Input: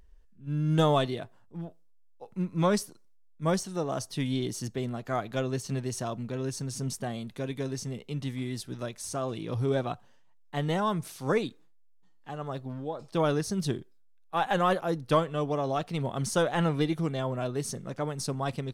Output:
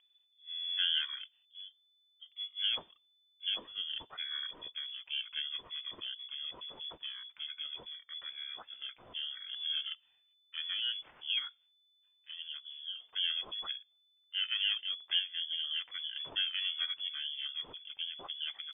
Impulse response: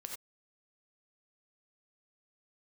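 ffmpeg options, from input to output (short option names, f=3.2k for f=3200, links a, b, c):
-af "lowshelf=f=200:g=-9,asetrate=24750,aresample=44100,atempo=1.7818,lowpass=f=3k:t=q:w=0.5098,lowpass=f=3k:t=q:w=0.6013,lowpass=f=3k:t=q:w=0.9,lowpass=f=3k:t=q:w=2.563,afreqshift=-3500,volume=-6.5dB"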